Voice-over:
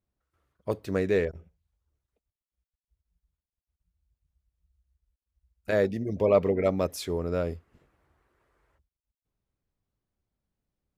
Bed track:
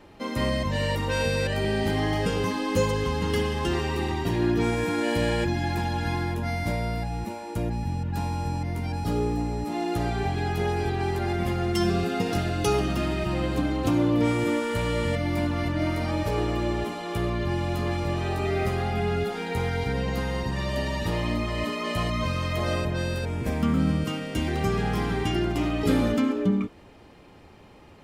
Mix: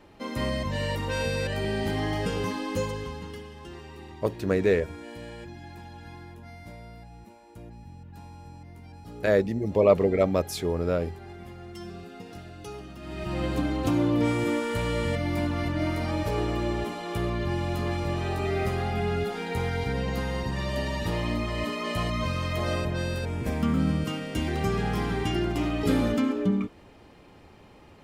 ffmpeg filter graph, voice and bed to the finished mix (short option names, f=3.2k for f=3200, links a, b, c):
-filter_complex "[0:a]adelay=3550,volume=2.5dB[a];[1:a]volume=12dB,afade=t=out:st=2.5:d=0.9:silence=0.211349,afade=t=in:st=13.01:d=0.44:silence=0.177828[b];[a][b]amix=inputs=2:normalize=0"